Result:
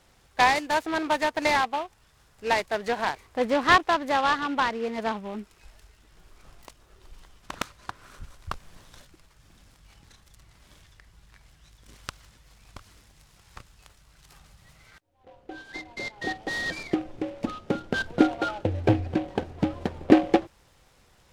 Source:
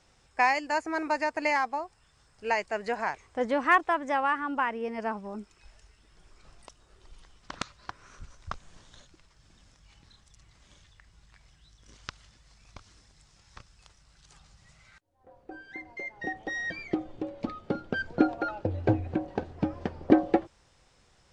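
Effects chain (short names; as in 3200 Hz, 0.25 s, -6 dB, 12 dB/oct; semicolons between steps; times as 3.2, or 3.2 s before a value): noise-modulated delay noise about 1900 Hz, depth 0.039 ms; gain +3.5 dB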